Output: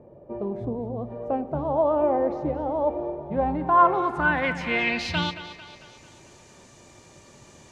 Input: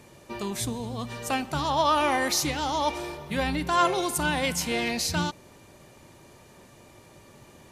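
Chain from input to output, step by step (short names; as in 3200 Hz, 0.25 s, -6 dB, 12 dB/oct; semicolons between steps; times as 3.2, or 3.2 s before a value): low-pass sweep 580 Hz -> 6900 Hz, 3.12–6.1; split-band echo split 470 Hz, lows 0.113 s, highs 0.223 s, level -13 dB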